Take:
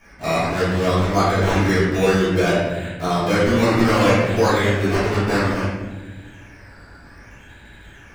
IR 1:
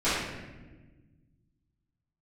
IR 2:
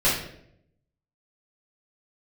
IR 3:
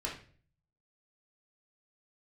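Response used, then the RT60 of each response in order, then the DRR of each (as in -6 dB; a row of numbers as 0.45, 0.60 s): 1; 1.3, 0.70, 0.45 s; -16.5, -9.0, -3.5 dB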